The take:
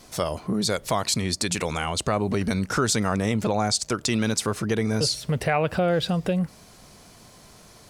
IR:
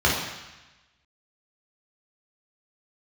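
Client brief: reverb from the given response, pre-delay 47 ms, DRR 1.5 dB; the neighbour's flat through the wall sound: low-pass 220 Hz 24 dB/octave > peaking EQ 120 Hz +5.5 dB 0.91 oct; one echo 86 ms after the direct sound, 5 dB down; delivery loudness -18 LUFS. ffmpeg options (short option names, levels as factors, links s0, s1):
-filter_complex "[0:a]aecho=1:1:86:0.562,asplit=2[s0][s1];[1:a]atrim=start_sample=2205,adelay=47[s2];[s1][s2]afir=irnorm=-1:irlink=0,volume=0.106[s3];[s0][s3]amix=inputs=2:normalize=0,lowpass=f=220:w=0.5412,lowpass=f=220:w=1.3066,equalizer=f=120:t=o:w=0.91:g=5.5,volume=1.78"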